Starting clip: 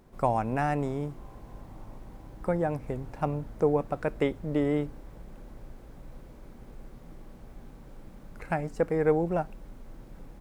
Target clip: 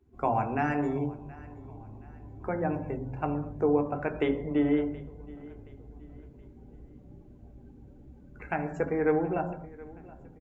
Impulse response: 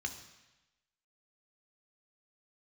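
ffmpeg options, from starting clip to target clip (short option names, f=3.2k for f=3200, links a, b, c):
-filter_complex "[1:a]atrim=start_sample=2205,afade=t=out:st=0.32:d=0.01,atrim=end_sample=14553[a];[0:a][a]afir=irnorm=-1:irlink=0,afftdn=nr=18:nf=-50,aecho=1:1:724|1448|2172:0.0891|0.0357|0.0143"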